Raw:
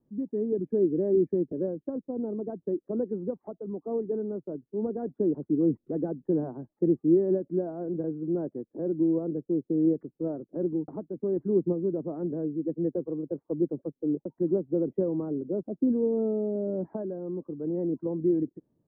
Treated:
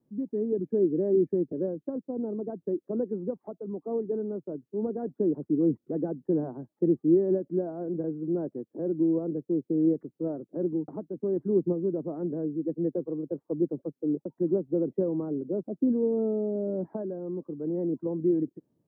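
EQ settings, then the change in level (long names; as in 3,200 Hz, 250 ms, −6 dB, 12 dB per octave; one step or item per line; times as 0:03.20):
high-pass filter 85 Hz
0.0 dB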